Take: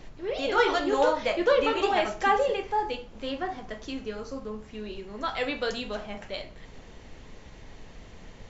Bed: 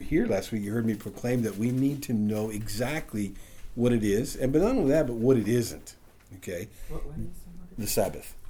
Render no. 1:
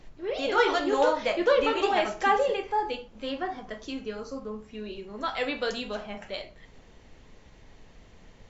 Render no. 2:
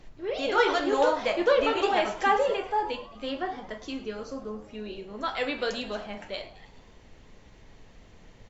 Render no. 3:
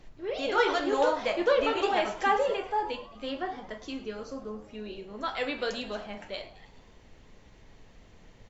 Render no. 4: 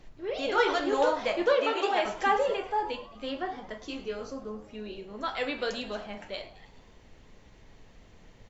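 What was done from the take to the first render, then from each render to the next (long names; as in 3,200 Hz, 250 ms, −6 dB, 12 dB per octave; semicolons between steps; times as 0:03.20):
noise reduction from a noise print 6 dB
echo with shifted repeats 107 ms, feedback 60%, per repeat +94 Hz, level −18 dB
level −2 dB
0:01.54–0:02.05: high-pass filter 300 Hz; 0:03.87–0:04.31: double-tracking delay 21 ms −3 dB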